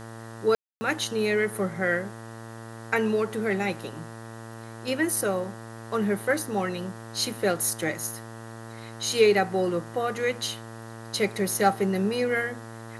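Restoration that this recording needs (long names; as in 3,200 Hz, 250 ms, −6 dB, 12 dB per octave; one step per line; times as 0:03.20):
hum removal 113.4 Hz, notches 17
ambience match 0:00.55–0:00.81
downward expander −33 dBFS, range −21 dB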